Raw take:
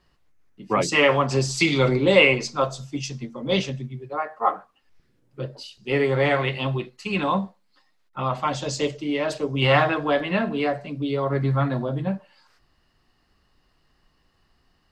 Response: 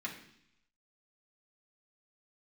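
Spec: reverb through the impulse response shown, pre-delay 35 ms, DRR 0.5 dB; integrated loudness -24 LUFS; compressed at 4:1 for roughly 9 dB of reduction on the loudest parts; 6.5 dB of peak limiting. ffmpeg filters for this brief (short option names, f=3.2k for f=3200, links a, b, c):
-filter_complex "[0:a]acompressor=threshold=-21dB:ratio=4,alimiter=limit=-16.5dB:level=0:latency=1,asplit=2[a][b];[1:a]atrim=start_sample=2205,adelay=35[c];[b][c]afir=irnorm=-1:irlink=0,volume=-2.5dB[d];[a][d]amix=inputs=2:normalize=0,volume=2dB"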